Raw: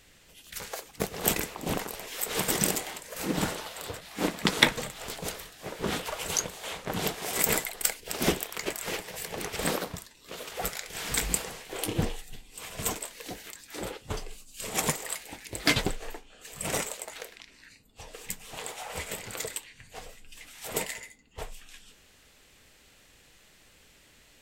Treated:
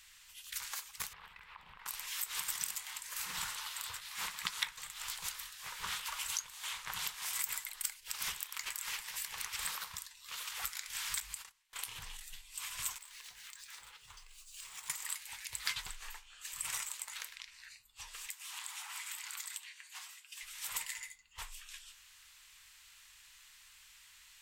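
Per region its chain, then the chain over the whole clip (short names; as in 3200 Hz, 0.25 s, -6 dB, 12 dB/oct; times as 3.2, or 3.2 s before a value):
1.13–1.86 compressor 10:1, threshold -38 dBFS + air absorption 440 m
11.2–12.21 de-hum 58.07 Hz, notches 7 + gate -37 dBFS, range -31 dB + compressor 4:1, threshold -33 dBFS
12.98–14.9 median filter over 3 samples + de-hum 60.65 Hz, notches 11 + compressor 4:1, threshold -47 dBFS
18.27–20.43 steep high-pass 720 Hz + compressor 4:1, threshold -40 dBFS
whole clip: passive tone stack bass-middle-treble 10-0-10; compressor 3:1, threshold -40 dBFS; resonant low shelf 800 Hz -6.5 dB, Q 3; gain +2 dB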